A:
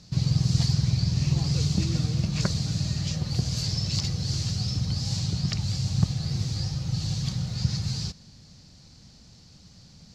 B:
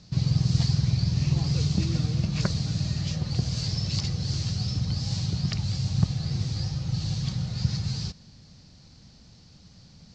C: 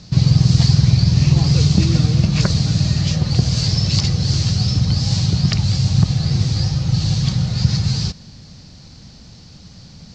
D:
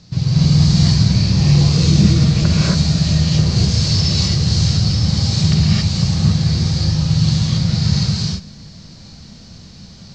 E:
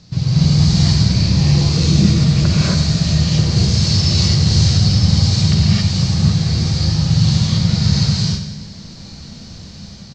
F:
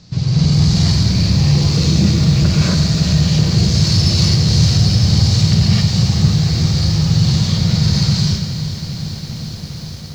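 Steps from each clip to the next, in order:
Bessel low-pass 5600 Hz, order 8
maximiser +12 dB; gain -1 dB
non-linear reverb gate 0.3 s rising, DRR -7.5 dB; gain -5.5 dB
AGC gain up to 3.5 dB; feedback echo 93 ms, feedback 58%, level -10 dB
in parallel at -4.5 dB: soft clip -14.5 dBFS, distortion -10 dB; on the sum: lo-fi delay 0.404 s, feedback 80%, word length 6-bit, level -12 dB; gain -2.5 dB

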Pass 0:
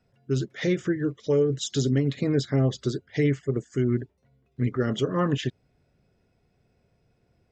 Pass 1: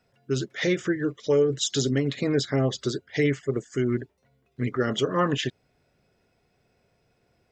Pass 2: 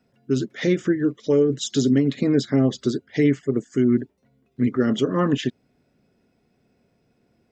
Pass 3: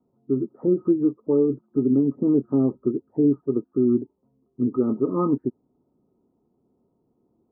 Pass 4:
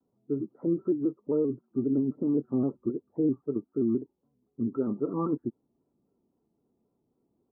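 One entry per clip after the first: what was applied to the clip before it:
low shelf 320 Hz -10 dB; gain +5 dB
bell 240 Hz +12 dB 1.2 oct; gain -2 dB
rippled Chebyshev low-pass 1300 Hz, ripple 9 dB; gain +1.5 dB
shaped vibrato square 3.8 Hz, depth 100 cents; gain -7 dB

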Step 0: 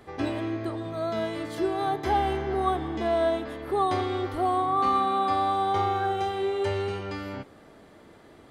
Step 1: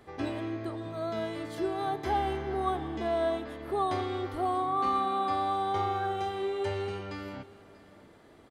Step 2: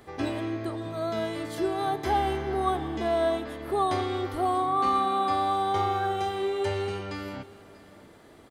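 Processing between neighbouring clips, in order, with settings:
echo 0.637 s -19.5 dB; gain -4.5 dB
high shelf 6200 Hz +6.5 dB; gain +3.5 dB

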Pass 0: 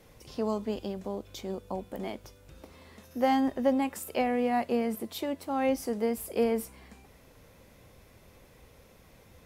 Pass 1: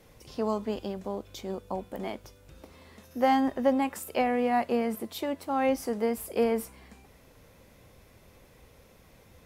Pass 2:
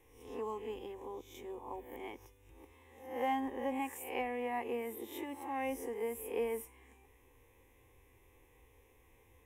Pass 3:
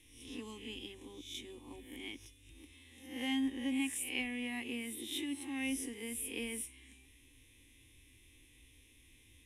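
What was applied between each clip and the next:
dynamic EQ 1200 Hz, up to +4 dB, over -43 dBFS, Q 0.73
spectral swells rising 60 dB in 0.59 s; fixed phaser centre 930 Hz, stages 8; gain -8 dB
EQ curve 200 Hz 0 dB, 290 Hz +5 dB, 420 Hz -13 dB, 930 Hz -17 dB, 3600 Hz +14 dB, 7200 Hz +5 dB, 10000 Hz +12 dB, 15000 Hz -14 dB; gain +1.5 dB

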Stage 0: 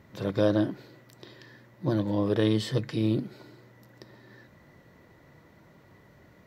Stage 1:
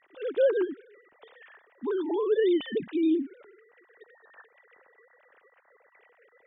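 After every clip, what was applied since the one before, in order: sine-wave speech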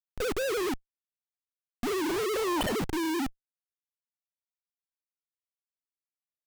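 Schmitt trigger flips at -38 dBFS; spectral gain 2.39–2.62, 460–1100 Hz +7 dB; gain +2 dB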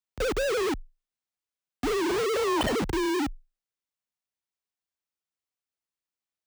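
bell 14000 Hz -9.5 dB 0.66 oct; frequency shift +20 Hz; gain +3 dB

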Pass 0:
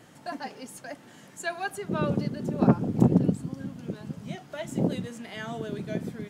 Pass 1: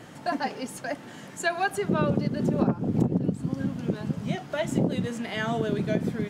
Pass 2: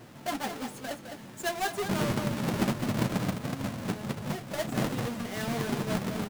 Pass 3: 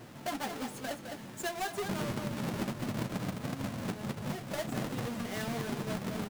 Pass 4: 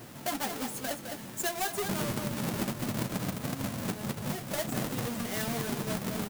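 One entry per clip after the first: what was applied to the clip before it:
high shelf 5900 Hz -6.5 dB; compressor 10:1, threshold -28 dBFS, peak gain reduction 15.5 dB; gain +8 dB
half-waves squared off; echo 0.209 s -7.5 dB; flange 1.4 Hz, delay 8.1 ms, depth 1.8 ms, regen -41%; gain -5 dB
compressor 4:1, threshold -33 dBFS, peak gain reduction 9 dB
high shelf 7200 Hz +11 dB; gain +2 dB

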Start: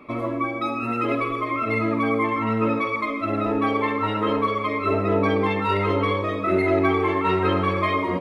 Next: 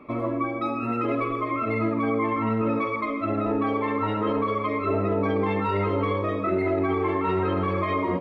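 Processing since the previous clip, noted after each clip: high shelf 2500 Hz -11 dB; limiter -16 dBFS, peak gain reduction 6.5 dB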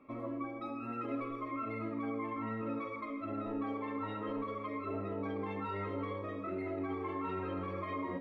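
resonator 270 Hz, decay 0.34 s, harmonics all, mix 80%; gain -2.5 dB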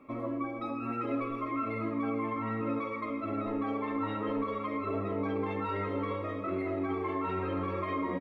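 echo 0.45 s -12 dB; gain +5 dB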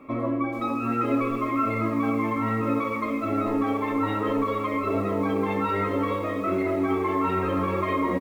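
doubler 26 ms -10.5 dB; lo-fi delay 0.437 s, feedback 35%, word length 8-bit, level -15 dB; gain +8 dB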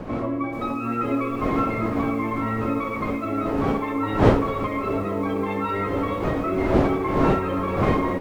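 wind noise 500 Hz -27 dBFS; requantised 12-bit, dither none

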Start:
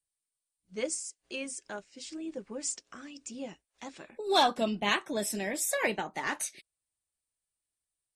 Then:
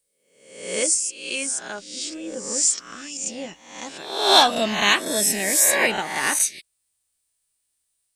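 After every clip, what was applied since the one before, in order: spectral swells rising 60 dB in 0.71 s; high shelf 2200 Hz +9 dB; gain +4 dB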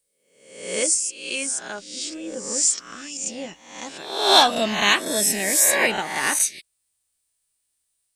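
nothing audible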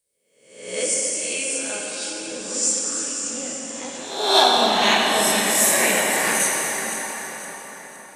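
regenerating reverse delay 0.257 s, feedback 61%, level -9.5 dB; plate-style reverb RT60 5 s, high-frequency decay 0.65×, DRR -3 dB; gain -3.5 dB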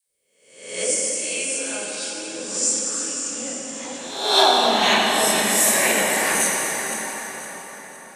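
dispersion lows, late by 81 ms, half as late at 690 Hz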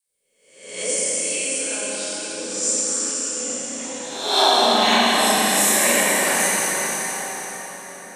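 Schroeder reverb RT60 2.4 s, combs from 30 ms, DRR -1.5 dB; gain -3 dB

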